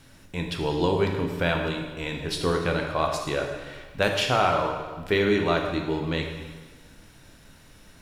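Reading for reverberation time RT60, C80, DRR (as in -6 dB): 1.4 s, 6.5 dB, 2.0 dB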